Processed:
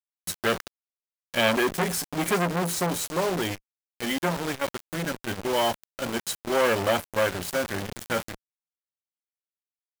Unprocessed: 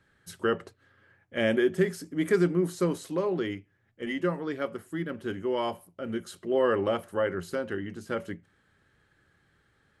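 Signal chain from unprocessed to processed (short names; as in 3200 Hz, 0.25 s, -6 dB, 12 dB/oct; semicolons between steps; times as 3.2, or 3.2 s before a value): high shelf 4100 Hz +9 dB; comb 1.3 ms, depth 42%; bit-crush 6-bit; core saturation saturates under 1700 Hz; gain +6.5 dB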